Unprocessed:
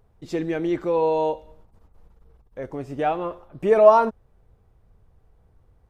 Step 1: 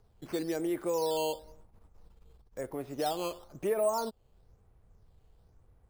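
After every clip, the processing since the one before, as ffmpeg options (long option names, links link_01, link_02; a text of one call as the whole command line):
ffmpeg -i in.wav -filter_complex "[0:a]acrossover=split=260|1100[link_01][link_02][link_03];[link_01]acompressor=threshold=-43dB:ratio=4[link_04];[link_02]acompressor=threshold=-25dB:ratio=4[link_05];[link_03]acompressor=threshold=-42dB:ratio=4[link_06];[link_04][link_05][link_06]amix=inputs=3:normalize=0,acrusher=samples=8:mix=1:aa=0.000001:lfo=1:lforange=8:lforate=1,volume=-4.5dB" out.wav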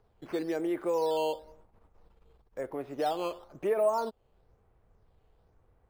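ffmpeg -i in.wav -af "bass=frequency=250:gain=-7,treble=frequency=4000:gain=-12,volume=2.5dB" out.wav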